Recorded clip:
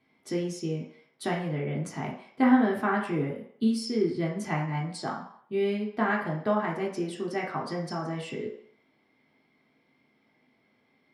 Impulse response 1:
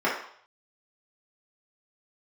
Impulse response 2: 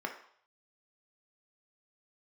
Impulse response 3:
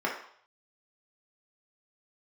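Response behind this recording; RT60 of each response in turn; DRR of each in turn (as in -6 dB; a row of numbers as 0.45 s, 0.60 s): 3; 0.60 s, 0.60 s, 0.60 s; -8.0 dB, 2.0 dB, -3.5 dB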